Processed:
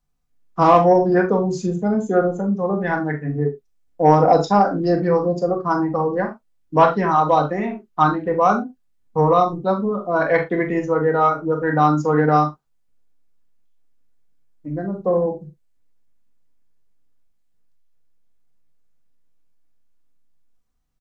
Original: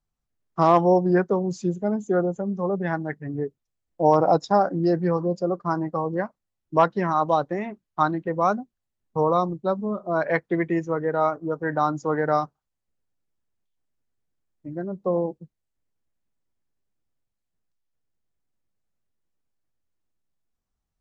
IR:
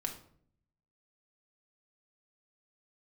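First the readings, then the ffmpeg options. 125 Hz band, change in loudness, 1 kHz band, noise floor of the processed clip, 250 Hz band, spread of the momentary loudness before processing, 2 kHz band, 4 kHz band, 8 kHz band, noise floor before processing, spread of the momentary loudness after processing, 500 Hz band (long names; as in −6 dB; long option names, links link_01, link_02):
+5.5 dB, +5.0 dB, +6.0 dB, −63 dBFS, +4.5 dB, 12 LU, +6.0 dB, +5.5 dB, can't be measured, −82 dBFS, 10 LU, +5.0 dB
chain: -filter_complex "[0:a]asplit=2[link_01][link_02];[link_02]adelay=40,volume=-11dB[link_03];[link_01][link_03]amix=inputs=2:normalize=0[link_04];[1:a]atrim=start_sample=2205,atrim=end_sample=3528[link_05];[link_04][link_05]afir=irnorm=-1:irlink=0,acontrast=26"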